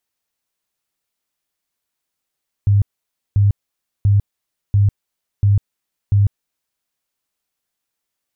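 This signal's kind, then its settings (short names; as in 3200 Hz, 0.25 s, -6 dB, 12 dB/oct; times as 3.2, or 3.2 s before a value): tone bursts 101 Hz, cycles 15, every 0.69 s, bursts 6, -9.5 dBFS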